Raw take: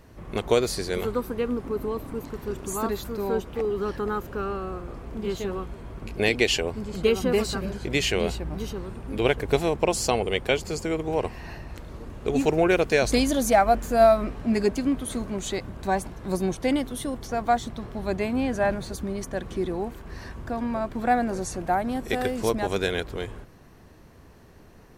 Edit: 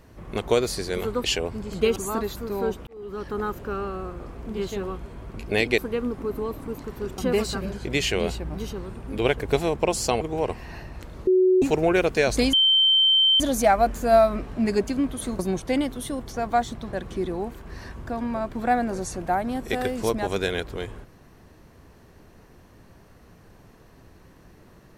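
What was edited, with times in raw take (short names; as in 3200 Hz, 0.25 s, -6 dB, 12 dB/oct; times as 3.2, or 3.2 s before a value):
1.24–2.64 swap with 6.46–7.18
3.55–4.08 fade in
10.21–10.96 cut
12.02–12.37 bleep 371 Hz -14.5 dBFS
13.28 add tone 3110 Hz -15 dBFS 0.87 s
15.27–16.34 cut
17.88–19.33 cut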